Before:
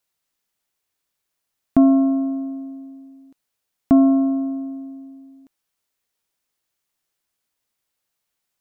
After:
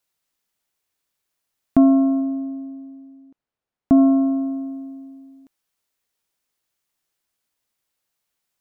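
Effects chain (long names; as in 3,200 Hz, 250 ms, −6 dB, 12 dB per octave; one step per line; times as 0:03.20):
0:02.20–0:03.97: low-pass filter 1,100 Hz → 1,000 Hz 6 dB per octave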